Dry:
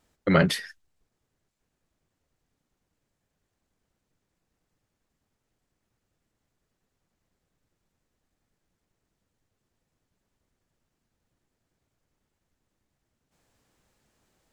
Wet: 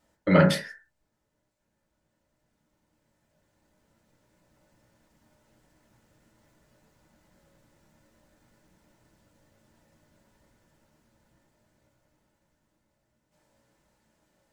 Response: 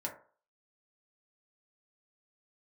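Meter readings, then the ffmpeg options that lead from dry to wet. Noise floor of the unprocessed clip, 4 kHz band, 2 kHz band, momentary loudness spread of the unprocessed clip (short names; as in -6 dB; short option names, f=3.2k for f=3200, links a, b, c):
-81 dBFS, -2.0 dB, -0.5 dB, 7 LU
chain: -filter_complex "[1:a]atrim=start_sample=2205,afade=t=out:st=0.24:d=0.01,atrim=end_sample=11025[a];[0:a][a]afir=irnorm=-1:irlink=0,dynaudnorm=f=220:g=31:m=14dB"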